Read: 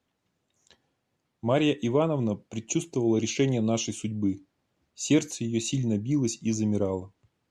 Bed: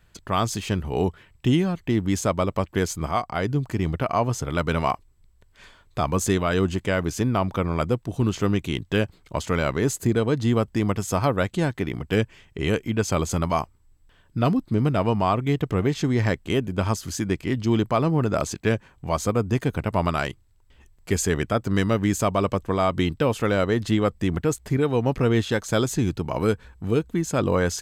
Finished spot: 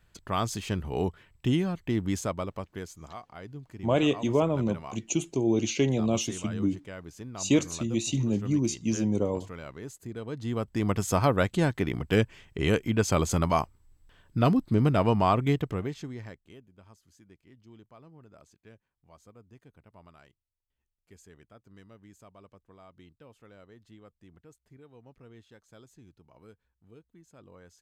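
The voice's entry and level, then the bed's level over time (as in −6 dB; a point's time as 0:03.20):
2.40 s, −0.5 dB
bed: 0:02.09 −5.5 dB
0:03.04 −18.5 dB
0:10.07 −18.5 dB
0:10.99 −1.5 dB
0:15.48 −1.5 dB
0:16.71 −31.5 dB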